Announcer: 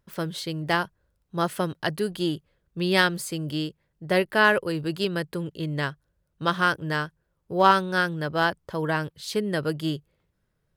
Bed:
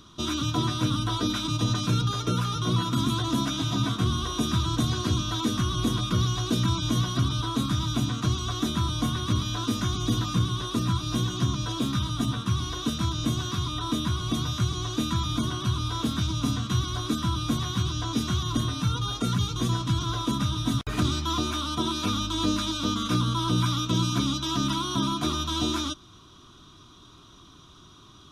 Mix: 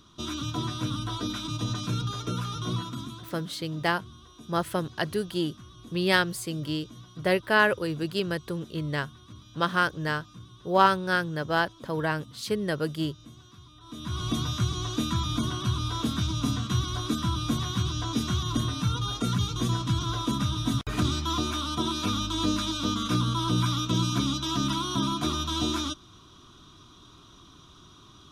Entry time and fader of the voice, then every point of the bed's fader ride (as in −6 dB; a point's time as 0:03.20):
3.15 s, −2.0 dB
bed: 0:02.73 −5 dB
0:03.44 −22 dB
0:13.79 −22 dB
0:14.20 −1 dB